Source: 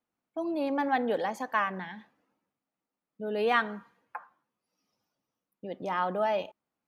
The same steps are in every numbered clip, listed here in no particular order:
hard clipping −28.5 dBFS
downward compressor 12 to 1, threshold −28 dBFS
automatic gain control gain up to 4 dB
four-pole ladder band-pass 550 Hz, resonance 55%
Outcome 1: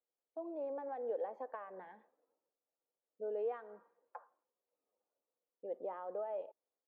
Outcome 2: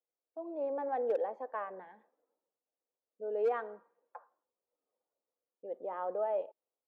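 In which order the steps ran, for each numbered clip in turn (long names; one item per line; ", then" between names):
automatic gain control, then downward compressor, then four-pole ladder band-pass, then hard clipping
four-pole ladder band-pass, then downward compressor, then hard clipping, then automatic gain control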